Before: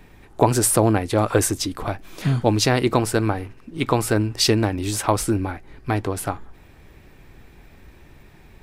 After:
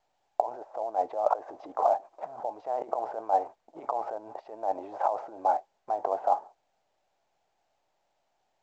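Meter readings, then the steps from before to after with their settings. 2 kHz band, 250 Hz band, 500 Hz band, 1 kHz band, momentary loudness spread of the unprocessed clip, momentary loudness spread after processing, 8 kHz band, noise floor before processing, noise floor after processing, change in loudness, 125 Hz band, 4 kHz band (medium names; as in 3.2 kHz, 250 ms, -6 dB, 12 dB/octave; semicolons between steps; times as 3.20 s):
-22.5 dB, -26.5 dB, -8.0 dB, -1.5 dB, 12 LU, 10 LU, under -35 dB, -49 dBFS, -76 dBFS, -10.0 dB, under -40 dB, under -35 dB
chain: gate -35 dBFS, range -33 dB; compressor with a negative ratio -27 dBFS, ratio -1; Butterworth band-pass 720 Hz, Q 2.5; trim +8 dB; µ-law 128 kbps 16 kHz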